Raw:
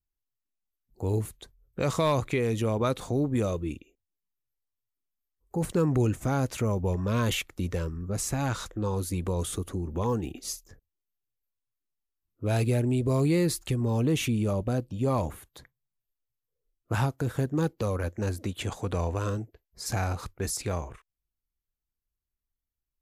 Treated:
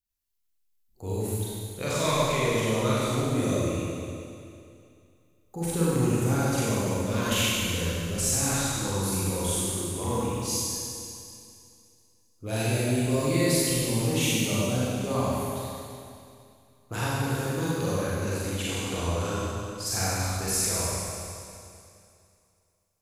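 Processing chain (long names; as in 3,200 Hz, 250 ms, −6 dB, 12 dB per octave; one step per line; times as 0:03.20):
high-shelf EQ 2,200 Hz +9.5 dB
four-comb reverb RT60 2.5 s, combs from 32 ms, DRR −8.5 dB
level −8 dB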